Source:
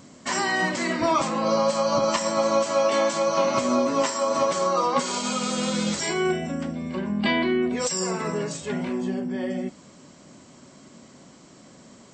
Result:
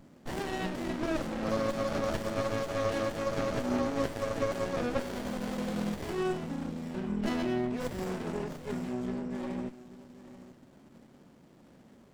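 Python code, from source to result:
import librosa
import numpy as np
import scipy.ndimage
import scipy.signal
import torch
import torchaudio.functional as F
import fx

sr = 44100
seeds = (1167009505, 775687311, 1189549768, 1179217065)

p1 = x + fx.echo_single(x, sr, ms=838, db=-16.0, dry=0)
p2 = fx.running_max(p1, sr, window=33)
y = F.gain(torch.from_numpy(p2), -6.5).numpy()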